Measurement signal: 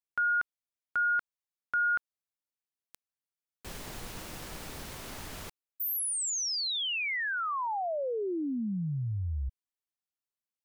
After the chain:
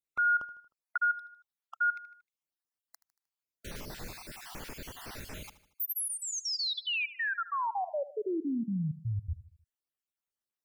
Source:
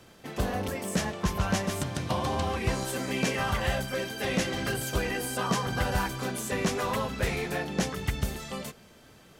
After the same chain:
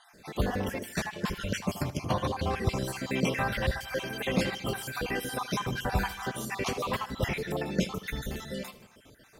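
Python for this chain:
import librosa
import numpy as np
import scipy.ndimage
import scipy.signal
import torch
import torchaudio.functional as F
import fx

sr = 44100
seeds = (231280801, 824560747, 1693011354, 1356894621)

y = fx.spec_dropout(x, sr, seeds[0], share_pct=45)
y = fx.dynamic_eq(y, sr, hz=8100.0, q=1.7, threshold_db=-55.0, ratio=4.0, max_db=-6)
y = fx.echo_feedback(y, sr, ms=77, feedback_pct=50, wet_db=-16.0)
y = y * 10.0 ** (1.0 / 20.0)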